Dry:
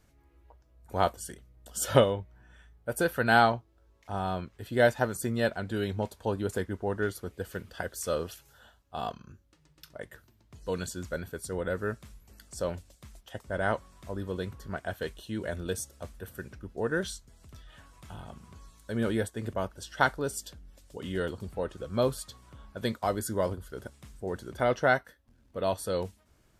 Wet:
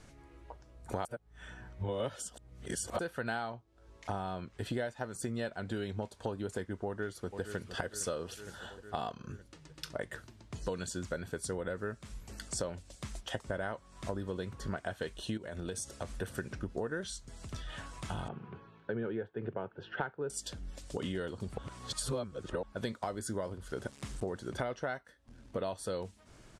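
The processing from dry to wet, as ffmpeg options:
-filter_complex "[0:a]asplit=2[a][b];[b]afade=t=in:st=6.86:d=0.01,afade=t=out:st=7.7:d=0.01,aecho=0:1:460|920|1380|1840|2300:0.149624|0.082293|0.0452611|0.0248936|0.0136915[c];[a][c]amix=inputs=2:normalize=0,asettb=1/sr,asplit=3[d][e][f];[d]atrim=end=15.374[g];[e]atrim=start=15.37:end=16.19,asetpts=PTS-STARTPTS,afade=t=in:d=0.004:c=qsin,afade=t=out:st=0.816:d=0.004:c=qsin,acompressor=threshold=-42dB:ratio=6:attack=3.2:release=140:knee=1:detection=peak[h];[f]atrim=start=16.186[i];[g][h]acrossfade=d=0.004:c1=hsin:c2=qsin[j];[j][i]acrossfade=d=0.004:c1=qsin:c2=hsin,asettb=1/sr,asplit=3[k][l][m];[k]atrim=end=18.284[n];[l]atrim=start=18.28:end=20.3,asetpts=PTS-STARTPTS,afade=t=in:d=0.004:c=qsin,afade=t=out:st=2.016:d=0.004:c=qsin,highpass=f=120:w=0.5412,highpass=f=120:w=1.3066,equalizer=f=190:t=q:w=4:g=-4,equalizer=f=260:t=q:w=4:g=-8,equalizer=f=420:t=q:w=4:g=4,equalizer=f=610:t=q:w=4:g=-8,equalizer=f=1.1k:t=q:w=4:g=-8,equalizer=f=2k:t=q:w=4:g=-9,lowpass=f=2.3k:w=0.5412,lowpass=f=2.3k:w=1.3066[o];[m]atrim=start=20.296[p];[n][o]acrossfade=d=0.004:c1=hsin:c2=qsin[q];[q][p]acrossfade=d=0.004:c1=qsin:c2=hsin,asettb=1/sr,asplit=3[r][s][t];[r]atrim=end=23.134[u];[s]atrim=start=23.13:end=24.4,asetpts=PTS-STARTPTS,afade=t=in:d=0.004:c=qsin,afade=t=out:st=1.266:d=0.004:c=qsin,aeval=exprs='val(0)*gte(abs(val(0)),0.00178)':c=same[v];[t]atrim=start=24.396[w];[u][v]acrossfade=d=0.004:c1=hsin:c2=qsin[x];[x][w]acrossfade=d=0.004:c1=qsin:c2=hsin,asplit=5[y][z][aa][ab][ac];[y]atrim=end=1.052[ad];[z]atrim=start=1.048:end=2.992,asetpts=PTS-STARTPTS,areverse[ae];[aa]atrim=start=2.988:end=21.582[af];[ab]atrim=start=21.578:end=22.632,asetpts=PTS-STARTPTS,areverse[ag];[ac]atrim=start=22.628[ah];[ad][ae]acrossfade=d=0.004:c1=hsin:c2=hsin[ai];[ai][af]acrossfade=d=0.004:c1=hsin:c2=hsin[aj];[aj][ag]acrossfade=d=0.004:c1=hsin:c2=hsin[ak];[ak][ah]acrossfade=d=0.004:c1=hsin:c2=hsin,lowpass=f=9.8k:w=0.5412,lowpass=f=9.8k:w=1.3066,equalizer=f=67:t=o:w=0.39:g=-10.5,acompressor=threshold=-43dB:ratio=12,volume=9.5dB"

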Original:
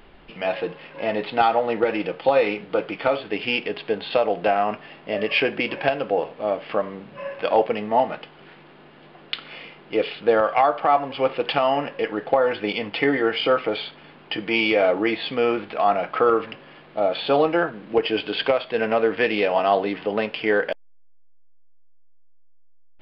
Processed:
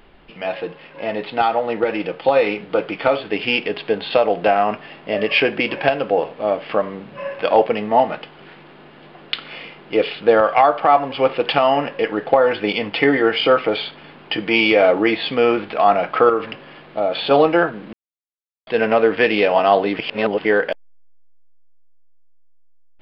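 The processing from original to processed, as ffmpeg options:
-filter_complex "[0:a]asettb=1/sr,asplit=3[a][b][c];[a]atrim=end=16.294[d];[b]atrim=start=16.29:end=17.31,asetpts=PTS-STARTPTS,afade=t=in:d=0.004:c=qsin,afade=t=out:st=1.016:d=0.004:c=qsin,acompressor=threshold=-26dB:ratio=1.5:attack=3.2:release=140:knee=1:detection=peak[e];[c]atrim=start=17.306[f];[d][e]acrossfade=d=0.004:c1=hsin:c2=qsin[g];[g][f]acrossfade=d=0.004:c1=qsin:c2=hsin,asplit=5[h][i][j][k][l];[h]atrim=end=17.93,asetpts=PTS-STARTPTS,afade=t=out:st=17.926:d=0.004:c=hsin[m];[i]atrim=start=17.93:end=18.67,asetpts=PTS-STARTPTS,volume=0[n];[j]atrim=start=18.67:end=19.992,asetpts=PTS-STARTPTS,afade=t=in:d=0.004:c=hsin[o];[k]atrim=start=19.988:end=20.452,asetpts=PTS-STARTPTS,areverse[p];[l]atrim=start=20.448[q];[m][n][o]concat=n=3:v=0:a=1[r];[r][p]acrossfade=d=0.004:c1=hsin:c2=hsin[s];[s][q]acrossfade=d=0.004:c1=hsin:c2=hsin,dynaudnorm=f=150:g=31:m=8dB"

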